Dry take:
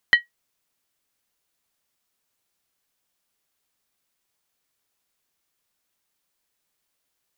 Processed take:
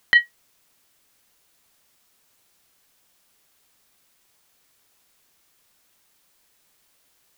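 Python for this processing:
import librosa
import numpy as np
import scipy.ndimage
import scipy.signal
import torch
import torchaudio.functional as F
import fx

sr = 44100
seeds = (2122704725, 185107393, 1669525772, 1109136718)

y = fx.over_compress(x, sr, threshold_db=-21.0, ratio=-1.0)
y = y * librosa.db_to_amplitude(8.0)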